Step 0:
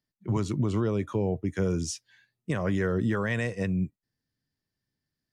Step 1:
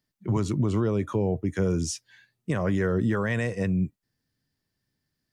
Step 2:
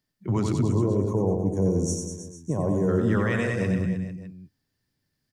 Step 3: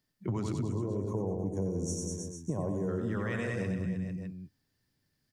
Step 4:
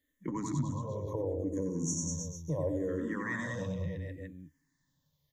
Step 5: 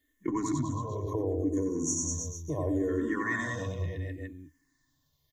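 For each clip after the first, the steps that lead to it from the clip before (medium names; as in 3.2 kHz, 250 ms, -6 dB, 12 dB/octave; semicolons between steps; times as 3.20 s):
dynamic bell 3.5 kHz, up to -3 dB, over -49 dBFS, Q 0.72; in parallel at -1.5 dB: peak limiter -29 dBFS, peak gain reduction 11 dB
time-frequency box 0.61–2.89 s, 1.1–5.5 kHz -21 dB; reverse bouncing-ball echo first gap 90 ms, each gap 1.15×, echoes 5
compression 6:1, threshold -30 dBFS, peak gain reduction 11 dB
rippled EQ curve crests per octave 1.1, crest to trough 12 dB; barber-pole phaser -0.71 Hz; trim +1 dB
comb 2.8 ms, depth 71%; trim +3 dB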